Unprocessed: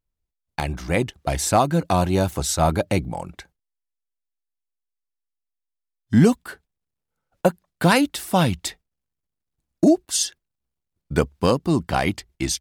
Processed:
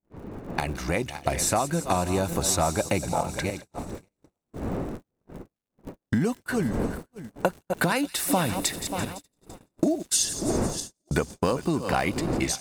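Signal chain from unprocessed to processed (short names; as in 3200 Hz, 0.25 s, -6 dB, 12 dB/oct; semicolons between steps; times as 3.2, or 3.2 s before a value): regenerating reverse delay 0.292 s, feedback 42%, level -13.5 dB; wind noise 300 Hz -37 dBFS; compressor 8:1, threshold -28 dBFS, peak gain reduction 17.5 dB; low shelf 250 Hz -5.5 dB; notch 3200 Hz, Q 9.5; crackle 110/s -44 dBFS; bell 4700 Hz -3 dB 0.52 oct; thin delay 0.169 s, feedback 74%, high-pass 4200 Hz, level -11 dB; gate -43 dBFS, range -40 dB; AGC gain up to 12.5 dB; gain -3.5 dB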